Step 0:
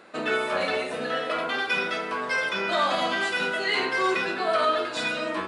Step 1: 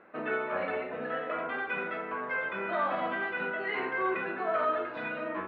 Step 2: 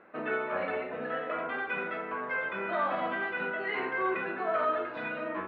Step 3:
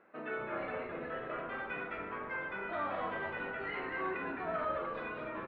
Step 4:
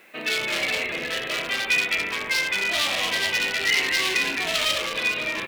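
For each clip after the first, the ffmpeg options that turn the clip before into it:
ffmpeg -i in.wav -af "lowpass=frequency=2200:width=0.5412,lowpass=frequency=2200:width=1.3066,volume=-5.5dB" out.wav
ffmpeg -i in.wav -af anull out.wav
ffmpeg -i in.wav -filter_complex "[0:a]asplit=6[link_01][link_02][link_03][link_04][link_05][link_06];[link_02]adelay=213,afreqshift=-100,volume=-5.5dB[link_07];[link_03]adelay=426,afreqshift=-200,volume=-12.4dB[link_08];[link_04]adelay=639,afreqshift=-300,volume=-19.4dB[link_09];[link_05]adelay=852,afreqshift=-400,volume=-26.3dB[link_10];[link_06]adelay=1065,afreqshift=-500,volume=-33.2dB[link_11];[link_01][link_07][link_08][link_09][link_10][link_11]amix=inputs=6:normalize=0,volume=-7.5dB" out.wav
ffmpeg -i in.wav -af "volume=35dB,asoftclip=hard,volume=-35dB,aexciter=amount=5.5:drive=9.6:freq=2100,volume=7.5dB" out.wav

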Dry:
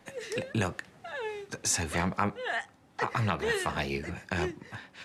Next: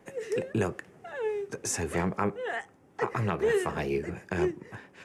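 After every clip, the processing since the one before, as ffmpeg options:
ffmpeg -i in.wav -af "equalizer=frequency=160:width_type=o:width=0.67:gain=3,equalizer=frequency=400:width_type=o:width=0.67:gain=10,equalizer=frequency=4000:width_type=o:width=0.67:gain=-10,volume=-2dB" out.wav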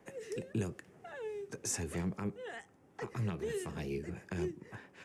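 ffmpeg -i in.wav -filter_complex "[0:a]acrossover=split=330|3000[link_01][link_02][link_03];[link_02]acompressor=threshold=-41dB:ratio=6[link_04];[link_01][link_04][link_03]amix=inputs=3:normalize=0,volume=-4.5dB" out.wav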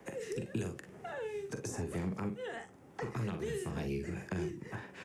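ffmpeg -i in.wav -filter_complex "[0:a]aecho=1:1:43|58:0.422|0.15,acrossover=split=220|1200[link_01][link_02][link_03];[link_01]acompressor=threshold=-45dB:ratio=4[link_04];[link_02]acompressor=threshold=-46dB:ratio=4[link_05];[link_03]acompressor=threshold=-55dB:ratio=4[link_06];[link_04][link_05][link_06]amix=inputs=3:normalize=0,volume=6.5dB" out.wav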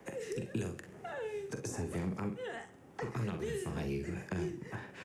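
ffmpeg -i in.wav -af "aecho=1:1:66|132|198|264|330:0.133|0.0787|0.0464|0.0274|0.0162" out.wav

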